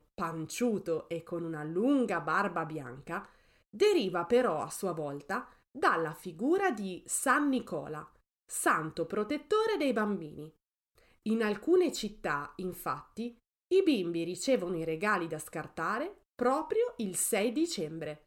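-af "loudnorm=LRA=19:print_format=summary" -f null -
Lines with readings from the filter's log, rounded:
Input Integrated:    -32.1 LUFS
Input True Peak:     -14.8 dBTP
Input LRA:             1.4 LU
Input Threshold:     -42.4 LUFS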